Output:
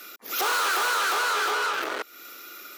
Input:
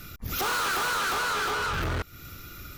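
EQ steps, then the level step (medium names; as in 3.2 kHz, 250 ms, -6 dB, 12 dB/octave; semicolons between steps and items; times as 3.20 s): high-pass 360 Hz 24 dB/octave; +3.0 dB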